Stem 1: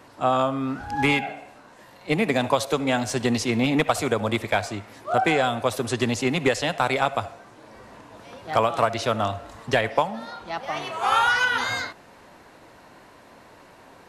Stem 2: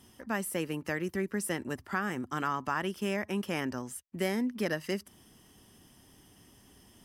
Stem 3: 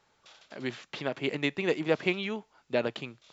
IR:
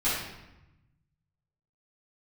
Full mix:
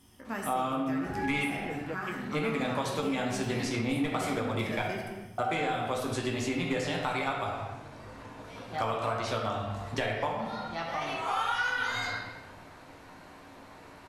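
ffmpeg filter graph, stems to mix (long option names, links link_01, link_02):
-filter_complex "[0:a]adelay=250,volume=-7dB,asplit=3[link_01][link_02][link_03];[link_01]atrim=end=4.82,asetpts=PTS-STARTPTS,afade=type=out:start_time=4.816:duration=0.004:curve=hsin[link_04];[link_02]atrim=start=4.82:end=5.38,asetpts=PTS-STARTPTS,volume=0[link_05];[link_03]atrim=start=5.38,asetpts=PTS-STARTPTS,afade=type=in:duration=0.004:curve=hsin[link_06];[link_04][link_05][link_06]concat=n=3:v=0:a=1,asplit=2[link_07][link_08];[link_08]volume=-7dB[link_09];[1:a]volume=-5dB,asplit=2[link_10][link_11];[link_11]volume=-9.5dB[link_12];[2:a]afwtdn=0.0178,volume=-12dB,asplit=2[link_13][link_14];[link_14]apad=whole_len=310572[link_15];[link_10][link_15]sidechaincompress=threshold=-43dB:ratio=8:attack=16:release=265[link_16];[3:a]atrim=start_sample=2205[link_17];[link_09][link_12]amix=inputs=2:normalize=0[link_18];[link_18][link_17]afir=irnorm=-1:irlink=0[link_19];[link_07][link_16][link_13][link_19]amix=inputs=4:normalize=0,acompressor=threshold=-31dB:ratio=2.5"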